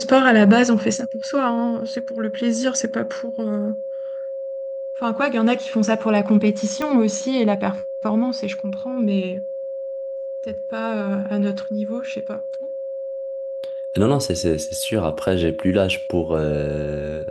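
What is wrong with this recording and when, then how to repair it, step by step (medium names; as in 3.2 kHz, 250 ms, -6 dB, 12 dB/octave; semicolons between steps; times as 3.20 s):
whine 540 Hz -26 dBFS
6.82 s: pop -12 dBFS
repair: de-click; band-stop 540 Hz, Q 30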